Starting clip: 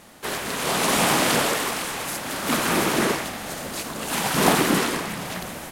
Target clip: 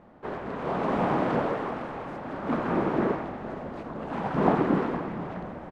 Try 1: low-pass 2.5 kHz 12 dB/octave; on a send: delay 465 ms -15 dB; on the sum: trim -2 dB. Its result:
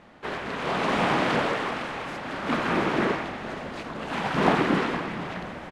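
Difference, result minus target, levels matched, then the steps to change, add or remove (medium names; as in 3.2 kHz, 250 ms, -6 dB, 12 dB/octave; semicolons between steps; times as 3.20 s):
2 kHz band +7.0 dB
change: low-pass 1 kHz 12 dB/octave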